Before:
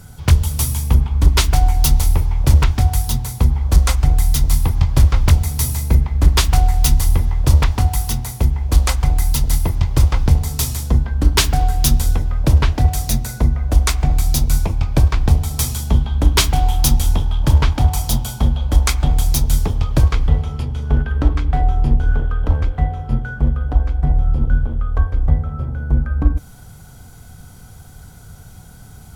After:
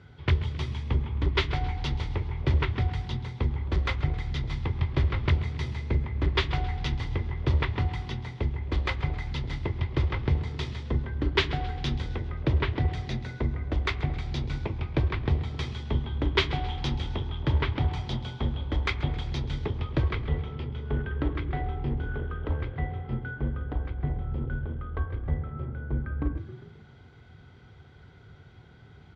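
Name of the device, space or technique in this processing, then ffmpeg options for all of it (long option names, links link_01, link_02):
frequency-shifting delay pedal into a guitar cabinet: -filter_complex "[0:a]asplit=5[link_01][link_02][link_03][link_04][link_05];[link_02]adelay=133,afreqshift=39,volume=-16.5dB[link_06];[link_03]adelay=266,afreqshift=78,volume=-22.9dB[link_07];[link_04]adelay=399,afreqshift=117,volume=-29.3dB[link_08];[link_05]adelay=532,afreqshift=156,volume=-35.6dB[link_09];[link_01][link_06][link_07][link_08][link_09]amix=inputs=5:normalize=0,highpass=78,equalizer=frequency=190:width_type=q:width=4:gain=-6,equalizer=frequency=380:width_type=q:width=4:gain=9,equalizer=frequency=730:width_type=q:width=4:gain=-4,equalizer=frequency=2000:width_type=q:width=4:gain=7,equalizer=frequency=3400:width_type=q:width=4:gain=3,lowpass=frequency=3700:width=0.5412,lowpass=frequency=3700:width=1.3066,volume=-9dB"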